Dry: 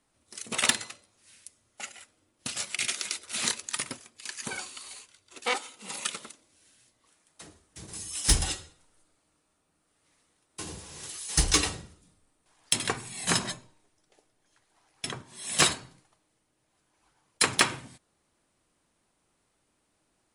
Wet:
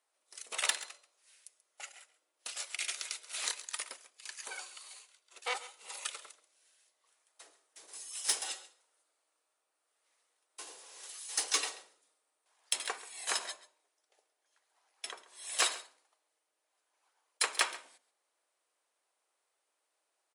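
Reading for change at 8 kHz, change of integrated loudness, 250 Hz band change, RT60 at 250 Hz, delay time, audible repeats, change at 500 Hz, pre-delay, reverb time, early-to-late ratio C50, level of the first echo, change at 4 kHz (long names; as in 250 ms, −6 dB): −7.0 dB, −7.0 dB, −23.5 dB, no reverb audible, 135 ms, 1, −10.0 dB, no reverb audible, no reverb audible, no reverb audible, −17.5 dB, −7.0 dB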